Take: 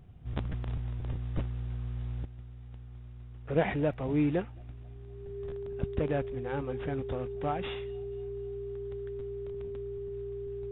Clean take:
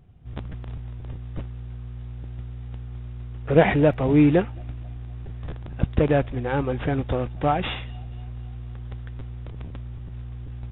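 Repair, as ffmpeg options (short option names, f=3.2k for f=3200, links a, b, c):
-af "bandreject=f=400:w=30,asetnsamples=n=441:p=0,asendcmd='2.25 volume volume 11dB',volume=0dB"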